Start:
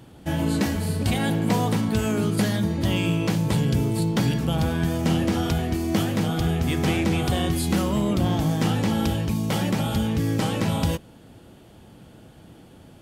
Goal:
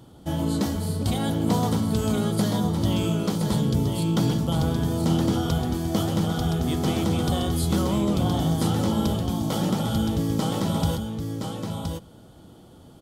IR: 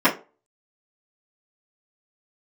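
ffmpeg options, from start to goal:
-filter_complex "[0:a]superequalizer=11b=0.398:12b=0.355,asplit=2[link_01][link_02];[link_02]aecho=0:1:1019:0.531[link_03];[link_01][link_03]amix=inputs=2:normalize=0,volume=-1.5dB"

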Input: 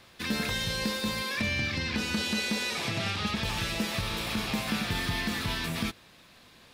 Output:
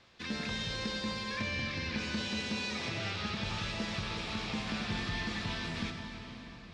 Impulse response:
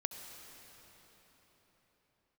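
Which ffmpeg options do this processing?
-filter_complex "[0:a]lowpass=frequency=6700:width=0.5412,lowpass=frequency=6700:width=1.3066[link_01];[1:a]atrim=start_sample=2205[link_02];[link_01][link_02]afir=irnorm=-1:irlink=0,volume=-5.5dB"

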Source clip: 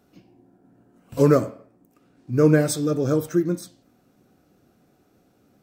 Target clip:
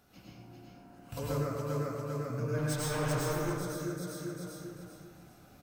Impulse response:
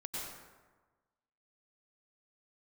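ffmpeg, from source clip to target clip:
-filter_complex "[0:a]aecho=1:1:395|790|1185|1580:0.596|0.197|0.0649|0.0214,asettb=1/sr,asplit=3[link_01][link_02][link_03];[link_01]atrim=end=2.584[link_04];[link_02]atrim=start=2.58:end=3.39,asetpts=PTS-STARTPTS,afade=type=in:duration=0.004:curve=qsin,afade=type=out:start_time=0.806:duration=0.004:curve=qsin,volume=22.5dB,asoftclip=hard,volume=-22.5dB[link_05];[link_03]atrim=start=3.386[link_06];[link_04][link_05]acrossfade=duration=0.004:curve1=hsin:curve2=qsin[link_07];[link_07][link_06]acrossfade=duration=0.004:curve1=qsin:curve2=hsin,equalizer=frequency=7600:width=5.7:gain=-3,acompressor=threshold=-35dB:ratio=4,equalizer=frequency=310:width=0.68:gain=-11[link_08];[1:a]atrim=start_sample=2205[link_09];[link_08][link_09]afir=irnorm=-1:irlink=0,volume=7dB"

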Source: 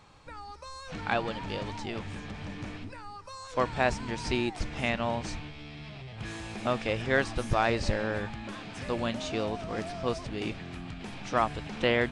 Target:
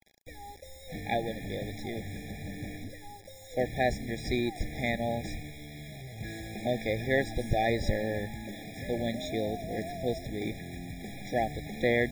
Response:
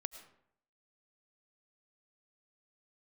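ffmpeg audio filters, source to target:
-af "acrusher=bits=7:mix=0:aa=0.000001,afftfilt=real='re*eq(mod(floor(b*sr/1024/820),2),0)':imag='im*eq(mod(floor(b*sr/1024/820),2),0)':win_size=1024:overlap=0.75"

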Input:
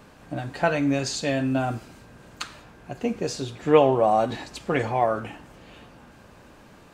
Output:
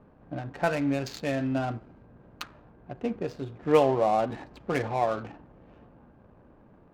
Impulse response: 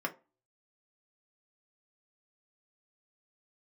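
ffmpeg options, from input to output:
-af "adynamicsmooth=sensitivity=4.5:basefreq=790,volume=-4dB"

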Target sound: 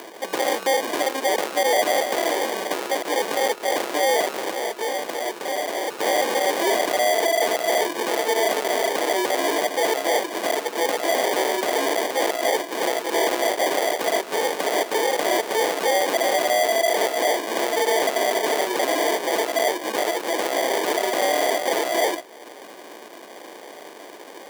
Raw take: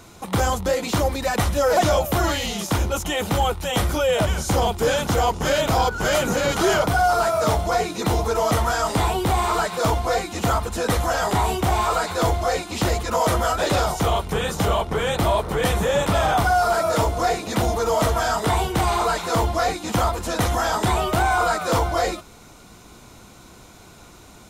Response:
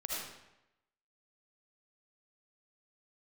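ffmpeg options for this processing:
-filter_complex "[0:a]acrusher=samples=33:mix=1:aa=0.000001,acompressor=mode=upward:threshold=-35dB:ratio=2.5,aeval=exprs='0.299*(cos(1*acos(clip(val(0)/0.299,-1,1)))-cos(1*PI/2))+0.0944*(cos(5*acos(clip(val(0)/0.299,-1,1)))-cos(5*PI/2))':channel_layout=same,asettb=1/sr,asplit=3[link_01][link_02][link_03];[link_01]atrim=end=4.494[link_04];[link_02]atrim=start=4.49:end=5.9,asetpts=PTS-STARTPTS,afade=type=in:duration=0.004:curve=qsin,afade=type=out:start_time=1.406:duration=0.004:curve=qsin,acompressor=threshold=-22dB:ratio=4[link_05];[link_03]atrim=start=5.896[link_06];[link_04][link_05]acrossfade=duration=0.004:curve1=hsin:curve2=qsin[link_07];[link_07][link_06]acrossfade=duration=0.004:curve1=qsin:curve2=hsin,highpass=frequency=360:width=0.5412,highpass=frequency=360:width=1.3066,volume=-2dB"

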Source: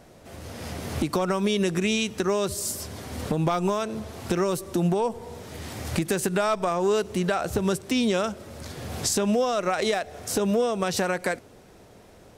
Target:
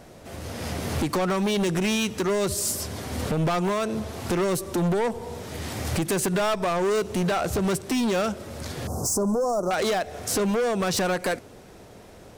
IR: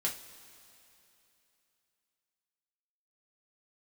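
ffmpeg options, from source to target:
-filter_complex "[0:a]asoftclip=type=hard:threshold=-25dB,asettb=1/sr,asplit=3[link_01][link_02][link_03];[link_01]atrim=end=8.874[link_04];[link_02]atrim=start=8.87:end=9.71,asetpts=PTS-STARTPTS,afade=type=in:duration=0.004:curve=qsin,afade=type=out:start_time=0.836:duration=0.004:curve=qsin,asuperstop=centerf=2600:order=8:qfactor=0.57[link_05];[link_03]atrim=start=9.706[link_06];[link_04][link_05]acrossfade=duration=0.004:curve1=hsin:curve2=qsin[link_07];[link_07][link_06]acrossfade=duration=0.004:curve1=qsin:curve2=hsin,volume=4dB"

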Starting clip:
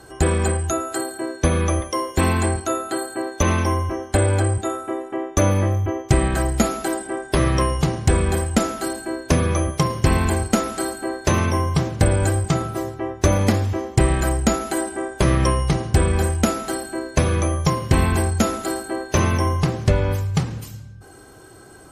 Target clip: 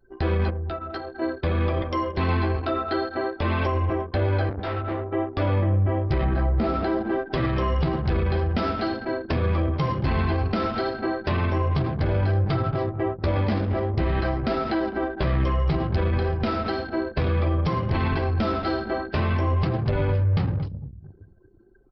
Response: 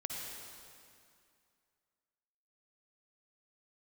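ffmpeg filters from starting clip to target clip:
-filter_complex "[0:a]asplit=2[link_01][link_02];[1:a]atrim=start_sample=2205,lowshelf=frequency=160:gain=5.5[link_03];[link_02][link_03]afir=irnorm=-1:irlink=0,volume=-19dB[link_04];[link_01][link_04]amix=inputs=2:normalize=0,asoftclip=type=tanh:threshold=-8.5dB,asettb=1/sr,asplit=3[link_05][link_06][link_07];[link_05]atrim=end=6.244[link_08];[link_06]atrim=start=6.24:end=7.1,asetpts=PTS-STARTPTS,afade=type=in:duration=0.004:curve=qsin,afade=type=out:start_time=0.856:duration=0.004:curve=qsin,tiltshelf=frequency=1400:gain=4[link_09];[link_07]atrim=start=7.096[link_10];[link_08][link_09]acrossfade=duration=0.004:curve1=hsin:curve2=qsin[link_11];[link_11][link_10]acrossfade=duration=0.004:curve1=qsin:curve2=hsin,asplit=2[link_12][link_13];[link_13]adelay=226,lowpass=frequency=3000:poles=1,volume=-15dB,asplit=2[link_14][link_15];[link_15]adelay=226,lowpass=frequency=3000:poles=1,volume=0.47,asplit=2[link_16][link_17];[link_17]adelay=226,lowpass=frequency=3000:poles=1,volume=0.47,asplit=2[link_18][link_19];[link_19]adelay=226,lowpass=frequency=3000:poles=1,volume=0.47[link_20];[link_12][link_14][link_16][link_18][link_20]amix=inputs=5:normalize=0,asettb=1/sr,asplit=3[link_21][link_22][link_23];[link_21]atrim=end=0.494[link_24];[link_22]atrim=start=0.49:end=1.22,asetpts=PTS-STARTPTS,afade=type=in:duration=0.004:curve=qsin,afade=type=out:start_time=0.726:duration=0.004:curve=qsin,acompressor=threshold=-27dB:ratio=10[link_25];[link_23]atrim=start=1.216[link_26];[link_24][link_25]acrossfade=duration=0.004:curve1=hsin:curve2=qsin[link_27];[link_27][link_26]acrossfade=duration=0.004:curve1=qsin:curve2=hsin,asettb=1/sr,asplit=3[link_28][link_29][link_30];[link_28]atrim=end=4.494[link_31];[link_29]atrim=start=4.49:end=5.12,asetpts=PTS-STARTPTS,afade=type=in:duration=0.004:curve=qsin,afade=type=out:start_time=0.626:duration=0.004:curve=qsin,asoftclip=type=hard:threshold=-25.5dB[link_32];[link_30]atrim=start=5.116[link_33];[link_31][link_32]acrossfade=duration=0.004:curve1=hsin:curve2=qsin[link_34];[link_34][link_33]acrossfade=duration=0.004:curve1=qsin:curve2=hsin,flanger=delay=7.1:depth=7.9:regen=-17:speed=0.55:shape=triangular,alimiter=limit=-19.5dB:level=0:latency=1:release=46,anlmdn=2.51,aresample=11025,aresample=44100,volume=4dB"

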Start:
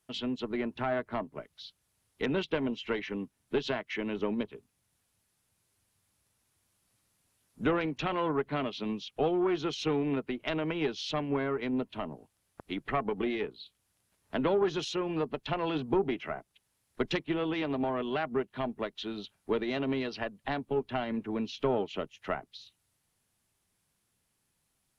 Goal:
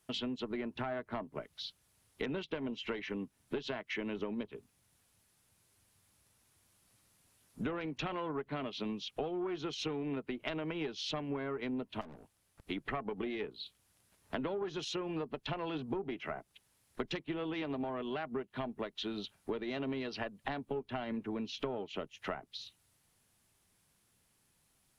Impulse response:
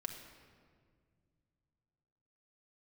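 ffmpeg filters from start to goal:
-filter_complex "[0:a]acompressor=threshold=-40dB:ratio=5,asettb=1/sr,asplit=3[link_01][link_02][link_03];[link_01]atrim=end=12.014[link_04];[link_02]atrim=start=12.01:end=12.67,asetpts=PTS-STARTPTS,afade=type=in:duration=0.004:curve=qsin,afade=type=out:start_time=0.656:duration=0.004:curve=qsin,aeval=exprs='(tanh(447*val(0)+0.6)-tanh(0.6))/447':channel_layout=same[link_05];[link_03]atrim=start=12.666[link_06];[link_04][link_05]acrossfade=duration=0.004:curve1=hsin:curve2=qsin[link_07];[link_07][link_06]acrossfade=duration=0.004:curve1=qsin:curve2=hsin,volume=4dB"

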